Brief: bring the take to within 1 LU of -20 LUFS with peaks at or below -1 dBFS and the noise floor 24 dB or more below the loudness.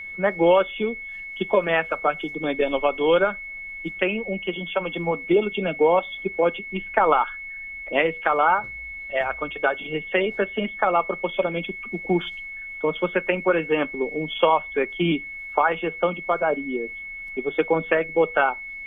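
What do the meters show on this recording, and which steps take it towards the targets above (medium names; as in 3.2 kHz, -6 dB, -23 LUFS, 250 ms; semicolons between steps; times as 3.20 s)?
steady tone 2.2 kHz; tone level -33 dBFS; loudness -23.5 LUFS; peak level -3.0 dBFS; loudness target -20.0 LUFS
-> band-stop 2.2 kHz, Q 30; trim +3.5 dB; peak limiter -1 dBFS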